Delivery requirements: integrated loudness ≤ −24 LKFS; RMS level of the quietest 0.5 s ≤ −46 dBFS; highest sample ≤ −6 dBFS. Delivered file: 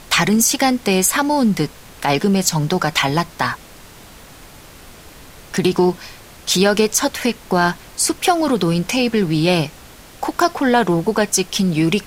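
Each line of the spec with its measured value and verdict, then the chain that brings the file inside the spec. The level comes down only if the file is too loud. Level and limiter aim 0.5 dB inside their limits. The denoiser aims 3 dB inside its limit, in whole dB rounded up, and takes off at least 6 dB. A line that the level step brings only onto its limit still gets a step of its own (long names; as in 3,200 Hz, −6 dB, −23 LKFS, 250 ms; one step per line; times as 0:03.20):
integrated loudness −17.5 LKFS: out of spec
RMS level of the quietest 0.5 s −41 dBFS: out of spec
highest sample −3.5 dBFS: out of spec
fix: level −7 dB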